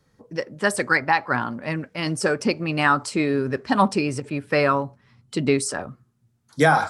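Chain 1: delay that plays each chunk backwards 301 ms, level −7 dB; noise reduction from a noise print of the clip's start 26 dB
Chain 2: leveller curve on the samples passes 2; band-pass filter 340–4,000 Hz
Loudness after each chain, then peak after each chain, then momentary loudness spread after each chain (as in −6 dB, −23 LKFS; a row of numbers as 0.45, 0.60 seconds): −22.5, −19.5 LKFS; −5.5, −3.5 dBFS; 10, 11 LU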